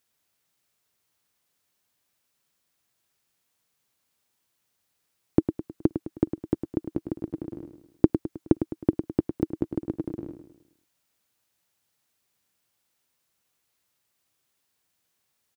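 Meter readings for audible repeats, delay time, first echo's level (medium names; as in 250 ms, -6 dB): 4, 105 ms, -9.0 dB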